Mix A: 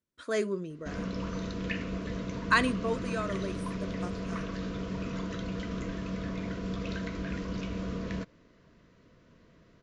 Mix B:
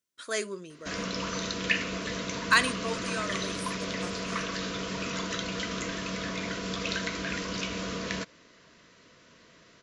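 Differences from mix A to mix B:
background +6.5 dB; master: add tilt EQ +3.5 dB/octave

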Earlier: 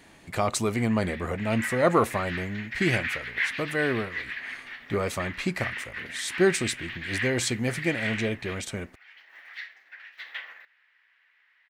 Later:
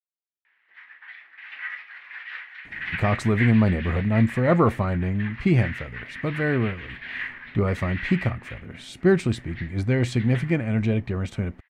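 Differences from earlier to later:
speech: entry +2.65 s; master: add tone controls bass +11 dB, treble -14 dB

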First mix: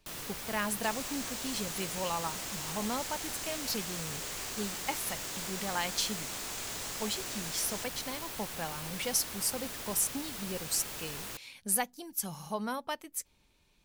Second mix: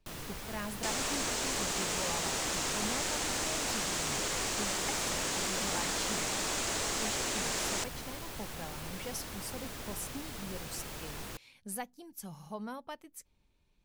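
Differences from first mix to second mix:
speech -7.5 dB; second sound +11.0 dB; master: add tilt EQ -1.5 dB/octave

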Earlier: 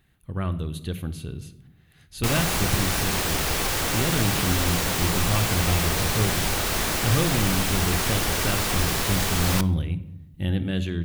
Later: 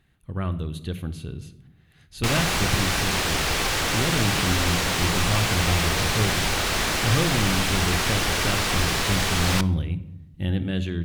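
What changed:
background: add peaking EQ 2.9 kHz +4 dB 3 oct; master: add treble shelf 12 kHz -11.5 dB

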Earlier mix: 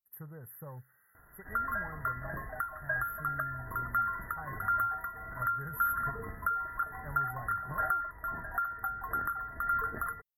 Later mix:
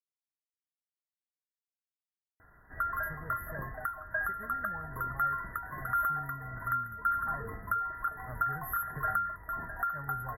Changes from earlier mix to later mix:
speech: entry +2.90 s; first sound: muted; second sound: entry +1.25 s

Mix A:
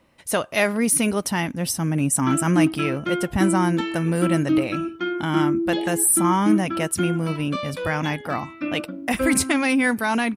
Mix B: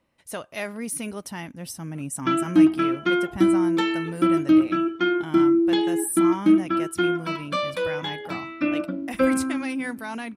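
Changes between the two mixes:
speech -11.0 dB; background +4.0 dB

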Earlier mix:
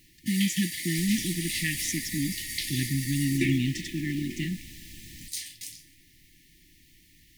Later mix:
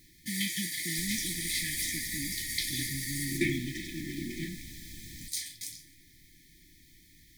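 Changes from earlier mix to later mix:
speech -11.0 dB; master: add Butterworth band-stop 2.8 kHz, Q 4.7

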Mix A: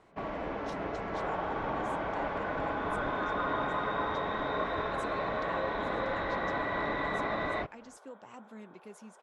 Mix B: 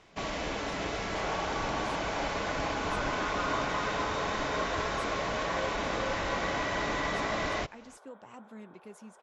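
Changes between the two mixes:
first sound: remove low-pass 1.4 kHz 12 dB/octave; master: add bass shelf 100 Hz +7 dB

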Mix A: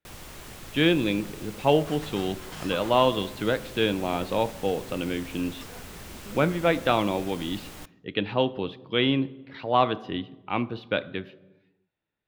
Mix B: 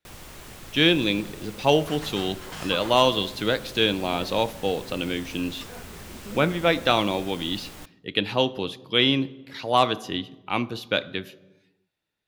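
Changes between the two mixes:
speech: remove distance through air 340 m; second sound +4.0 dB

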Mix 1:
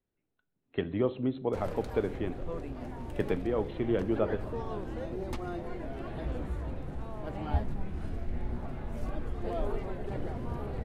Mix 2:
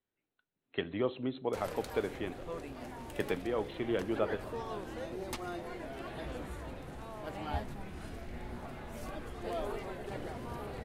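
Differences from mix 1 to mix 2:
speech: send -7.5 dB; master: add tilt EQ +2.5 dB/octave

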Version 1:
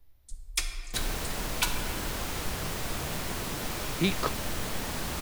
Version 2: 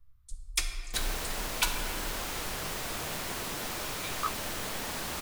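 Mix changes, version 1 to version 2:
speech: add ladder high-pass 1.1 kHz, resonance 75%; second sound: add bass shelf 250 Hz -9 dB

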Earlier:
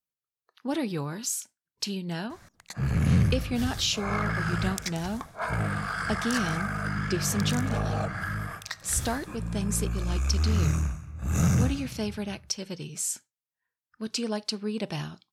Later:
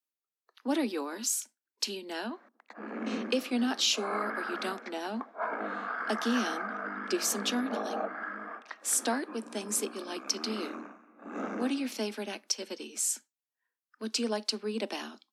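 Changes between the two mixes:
background: add low-pass 1.4 kHz 12 dB/octave; master: add steep high-pass 220 Hz 96 dB/octave

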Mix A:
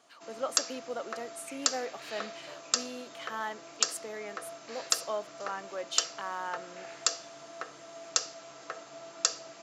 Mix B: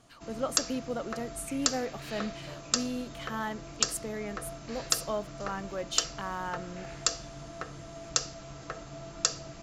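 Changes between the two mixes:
speech: add treble shelf 9.7 kHz +9 dB; master: remove high-pass 440 Hz 12 dB/octave

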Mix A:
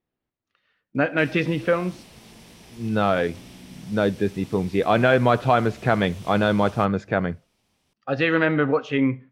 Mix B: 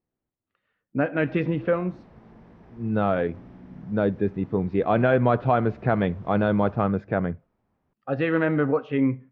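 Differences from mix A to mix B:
background: add resonant high shelf 2.1 kHz -9 dB, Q 1.5; master: add tape spacing loss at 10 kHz 36 dB

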